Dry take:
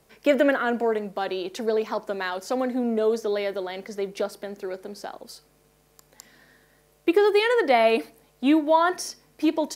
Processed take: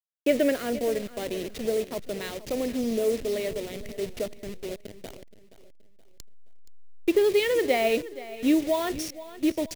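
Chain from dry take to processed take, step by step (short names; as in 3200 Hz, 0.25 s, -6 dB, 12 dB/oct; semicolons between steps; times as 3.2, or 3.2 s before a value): level-crossing sampler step -29 dBFS; band shelf 1100 Hz -11 dB 1.3 oct; feedback echo 0.474 s, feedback 39%, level -16 dB; gain -2 dB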